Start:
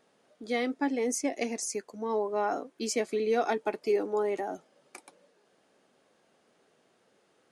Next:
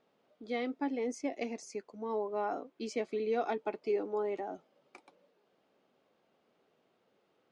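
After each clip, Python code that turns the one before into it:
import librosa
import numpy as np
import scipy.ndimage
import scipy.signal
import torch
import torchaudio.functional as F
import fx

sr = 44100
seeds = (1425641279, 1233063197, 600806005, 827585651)

y = scipy.signal.sosfilt(scipy.signal.butter(2, 3800.0, 'lowpass', fs=sr, output='sos'), x)
y = fx.peak_eq(y, sr, hz=1700.0, db=-5.5, octaves=0.37)
y = F.gain(torch.from_numpy(y), -5.0).numpy()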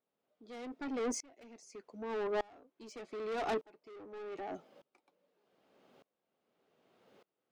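y = 10.0 ** (-39.0 / 20.0) * np.tanh(x / 10.0 ** (-39.0 / 20.0))
y = fx.tremolo_decay(y, sr, direction='swelling', hz=0.83, depth_db=29)
y = F.gain(torch.from_numpy(y), 10.5).numpy()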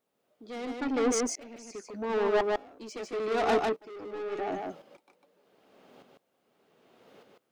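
y = x + 10.0 ** (-3.0 / 20.0) * np.pad(x, (int(150 * sr / 1000.0), 0))[:len(x)]
y = F.gain(torch.from_numpy(y), 8.0).numpy()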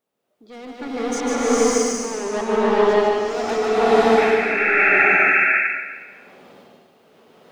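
y = x + 10.0 ** (-13.5 / 20.0) * np.pad(x, (int(280 * sr / 1000.0), 0))[:len(x)]
y = fx.spec_paint(y, sr, seeds[0], shape='noise', start_s=4.17, length_s=0.87, low_hz=1300.0, high_hz=2700.0, level_db=-26.0)
y = fx.rev_bloom(y, sr, seeds[1], attack_ms=620, drr_db=-11.0)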